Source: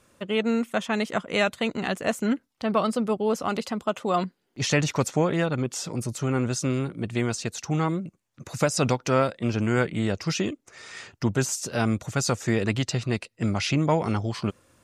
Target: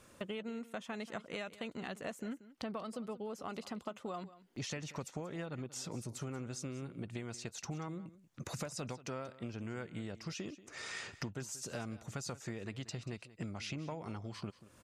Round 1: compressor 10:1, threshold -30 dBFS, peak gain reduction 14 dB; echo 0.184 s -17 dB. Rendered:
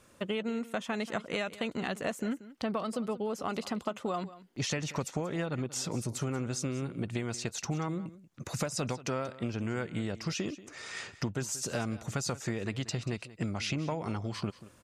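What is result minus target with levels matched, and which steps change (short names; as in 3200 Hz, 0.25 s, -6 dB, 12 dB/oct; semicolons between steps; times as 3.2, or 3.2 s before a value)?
compressor: peak gain reduction -8.5 dB
change: compressor 10:1, threshold -39.5 dBFS, peak gain reduction 22.5 dB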